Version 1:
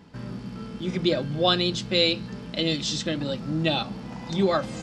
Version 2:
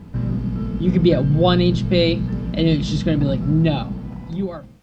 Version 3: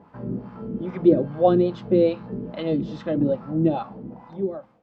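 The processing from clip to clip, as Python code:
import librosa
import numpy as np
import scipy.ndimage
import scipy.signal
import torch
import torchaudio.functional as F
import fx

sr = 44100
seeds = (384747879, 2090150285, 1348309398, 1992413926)

y1 = fx.fade_out_tail(x, sr, length_s=1.53)
y1 = fx.dmg_noise_colour(y1, sr, seeds[0], colour='white', level_db=-61.0)
y1 = fx.riaa(y1, sr, side='playback')
y1 = F.gain(torch.from_numpy(y1), 3.5).numpy()
y2 = fx.wah_lfo(y1, sr, hz=2.4, low_hz=330.0, high_hz=1100.0, q=2.0)
y2 = F.gain(torch.from_numpy(y2), 3.5).numpy()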